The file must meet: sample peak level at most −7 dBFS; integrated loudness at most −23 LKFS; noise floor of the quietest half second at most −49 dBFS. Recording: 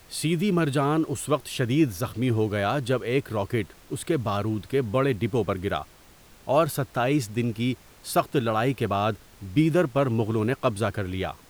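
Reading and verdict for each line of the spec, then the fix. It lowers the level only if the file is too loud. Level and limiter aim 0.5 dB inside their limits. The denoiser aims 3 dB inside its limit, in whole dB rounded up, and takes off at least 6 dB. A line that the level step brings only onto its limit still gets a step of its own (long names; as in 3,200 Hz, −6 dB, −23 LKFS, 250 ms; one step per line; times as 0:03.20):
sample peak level −8.5 dBFS: in spec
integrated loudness −25.5 LKFS: in spec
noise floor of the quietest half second −52 dBFS: in spec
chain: no processing needed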